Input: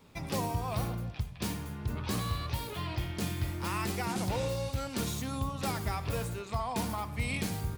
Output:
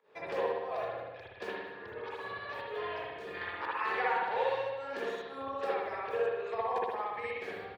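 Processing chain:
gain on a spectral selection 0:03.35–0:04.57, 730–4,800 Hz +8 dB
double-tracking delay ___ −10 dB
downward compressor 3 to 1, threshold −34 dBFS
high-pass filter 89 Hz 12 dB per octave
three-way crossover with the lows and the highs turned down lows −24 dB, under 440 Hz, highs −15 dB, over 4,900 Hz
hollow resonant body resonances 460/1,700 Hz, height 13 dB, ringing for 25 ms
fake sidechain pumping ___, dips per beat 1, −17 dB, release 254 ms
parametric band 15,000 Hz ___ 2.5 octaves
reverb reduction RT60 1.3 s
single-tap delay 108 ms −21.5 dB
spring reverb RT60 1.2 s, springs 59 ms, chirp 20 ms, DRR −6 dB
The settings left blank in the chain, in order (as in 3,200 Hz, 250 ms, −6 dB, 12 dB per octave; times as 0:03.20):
36 ms, 115 BPM, −10.5 dB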